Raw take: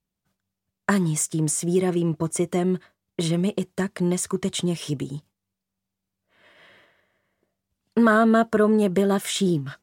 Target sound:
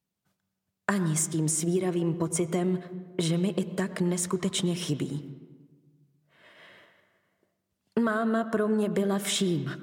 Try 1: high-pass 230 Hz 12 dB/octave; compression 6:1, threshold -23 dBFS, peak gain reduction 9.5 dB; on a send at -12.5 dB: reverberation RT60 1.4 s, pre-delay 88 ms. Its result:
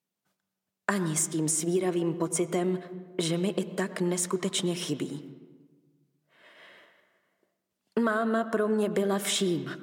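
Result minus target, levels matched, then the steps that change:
125 Hz band -4.0 dB
change: high-pass 95 Hz 12 dB/octave

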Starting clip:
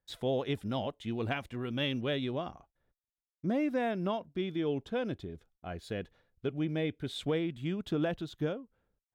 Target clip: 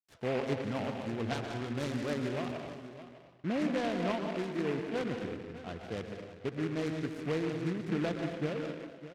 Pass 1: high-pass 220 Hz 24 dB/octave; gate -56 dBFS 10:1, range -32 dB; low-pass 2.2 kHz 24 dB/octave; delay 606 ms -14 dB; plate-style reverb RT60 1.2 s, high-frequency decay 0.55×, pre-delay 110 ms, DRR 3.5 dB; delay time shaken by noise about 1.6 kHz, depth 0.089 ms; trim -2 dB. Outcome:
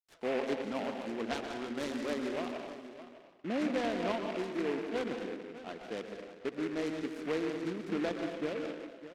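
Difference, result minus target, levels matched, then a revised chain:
125 Hz band -10.5 dB
high-pass 76 Hz 24 dB/octave; gate -56 dBFS 10:1, range -32 dB; low-pass 2.2 kHz 24 dB/octave; delay 606 ms -14 dB; plate-style reverb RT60 1.2 s, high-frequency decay 0.55×, pre-delay 110 ms, DRR 3.5 dB; delay time shaken by noise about 1.6 kHz, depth 0.089 ms; trim -2 dB

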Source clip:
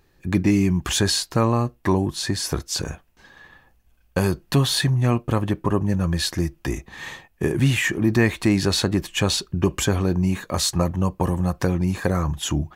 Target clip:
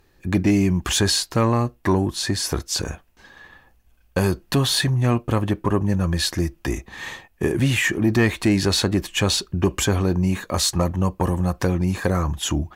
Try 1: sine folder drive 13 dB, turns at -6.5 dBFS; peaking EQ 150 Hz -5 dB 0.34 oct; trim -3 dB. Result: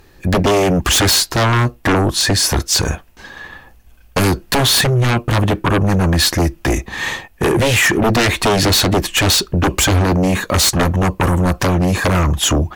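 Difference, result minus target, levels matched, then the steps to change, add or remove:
sine folder: distortion +25 dB
change: sine folder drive 1 dB, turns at -6.5 dBFS

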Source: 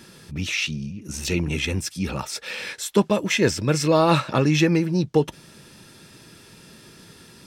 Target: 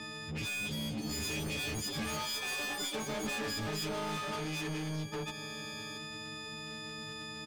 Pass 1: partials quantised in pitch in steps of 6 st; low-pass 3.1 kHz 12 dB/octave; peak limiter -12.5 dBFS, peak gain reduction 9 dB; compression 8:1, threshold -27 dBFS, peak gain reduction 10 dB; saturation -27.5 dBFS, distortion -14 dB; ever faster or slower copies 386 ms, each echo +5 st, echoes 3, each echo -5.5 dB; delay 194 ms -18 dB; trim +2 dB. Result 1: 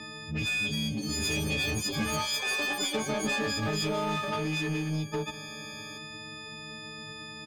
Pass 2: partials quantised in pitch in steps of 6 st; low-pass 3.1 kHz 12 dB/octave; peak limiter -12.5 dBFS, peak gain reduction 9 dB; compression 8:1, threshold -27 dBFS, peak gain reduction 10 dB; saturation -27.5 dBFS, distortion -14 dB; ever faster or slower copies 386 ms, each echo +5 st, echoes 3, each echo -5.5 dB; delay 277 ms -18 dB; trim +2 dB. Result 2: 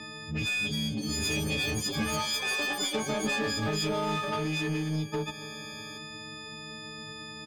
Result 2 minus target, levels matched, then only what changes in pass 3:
saturation: distortion -9 dB
change: saturation -38 dBFS, distortion -6 dB

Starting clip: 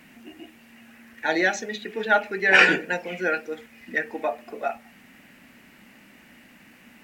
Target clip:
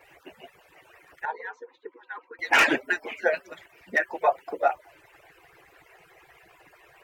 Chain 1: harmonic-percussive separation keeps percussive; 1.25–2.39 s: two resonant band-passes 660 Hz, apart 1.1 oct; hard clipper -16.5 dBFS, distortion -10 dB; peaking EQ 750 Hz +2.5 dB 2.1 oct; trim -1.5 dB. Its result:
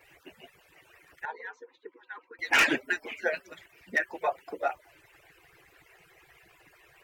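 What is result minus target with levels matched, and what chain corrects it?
1 kHz band -3.0 dB
harmonic-percussive separation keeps percussive; 1.25–2.39 s: two resonant band-passes 660 Hz, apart 1.1 oct; hard clipper -16.5 dBFS, distortion -10 dB; peaking EQ 750 Hz +10 dB 2.1 oct; trim -1.5 dB

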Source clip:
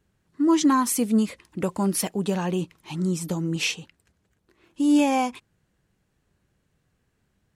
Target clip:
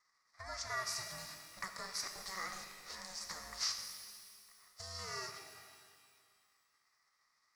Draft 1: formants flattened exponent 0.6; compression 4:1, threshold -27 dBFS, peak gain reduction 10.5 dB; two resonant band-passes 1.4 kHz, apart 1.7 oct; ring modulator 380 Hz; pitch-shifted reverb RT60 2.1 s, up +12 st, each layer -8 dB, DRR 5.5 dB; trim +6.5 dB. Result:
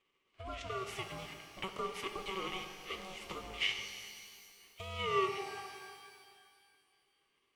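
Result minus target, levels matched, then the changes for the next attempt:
1 kHz band +4.0 dB
change: two resonant band-passes 2.8 kHz, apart 1.7 oct

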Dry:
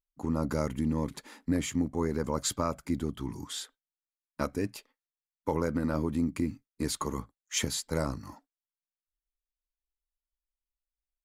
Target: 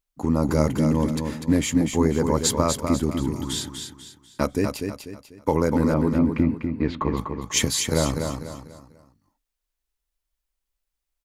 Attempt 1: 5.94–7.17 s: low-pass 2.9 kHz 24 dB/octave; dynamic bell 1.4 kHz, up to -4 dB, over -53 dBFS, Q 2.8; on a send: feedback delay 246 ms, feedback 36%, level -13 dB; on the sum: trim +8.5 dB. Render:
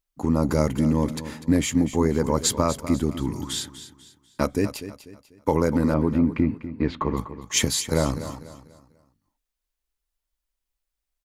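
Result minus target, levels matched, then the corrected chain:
echo-to-direct -7 dB
5.94–7.17 s: low-pass 2.9 kHz 24 dB/octave; dynamic bell 1.4 kHz, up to -4 dB, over -53 dBFS, Q 2.8; on a send: feedback delay 246 ms, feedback 36%, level -6 dB; on the sum: trim +8.5 dB

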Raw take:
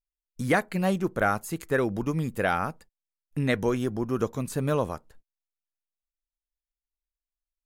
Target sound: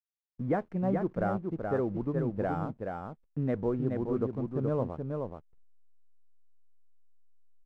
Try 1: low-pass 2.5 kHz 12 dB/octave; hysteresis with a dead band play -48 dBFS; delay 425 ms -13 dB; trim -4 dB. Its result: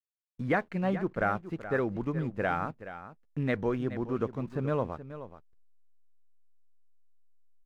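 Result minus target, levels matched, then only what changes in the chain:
2 kHz band +10.0 dB; echo-to-direct -8.5 dB
change: low-pass 820 Hz 12 dB/octave; change: delay 425 ms -4.5 dB

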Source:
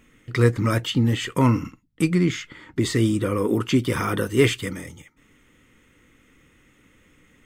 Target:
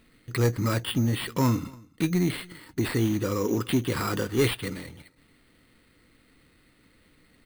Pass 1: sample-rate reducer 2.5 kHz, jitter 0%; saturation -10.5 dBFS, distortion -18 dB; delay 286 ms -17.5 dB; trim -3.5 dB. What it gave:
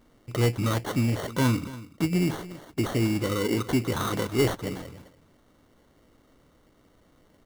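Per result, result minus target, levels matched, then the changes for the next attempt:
echo-to-direct +8 dB; sample-rate reducer: distortion +6 dB
change: delay 286 ms -25.5 dB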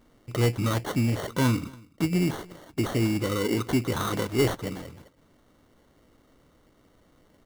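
sample-rate reducer: distortion +6 dB
change: sample-rate reducer 6.3 kHz, jitter 0%

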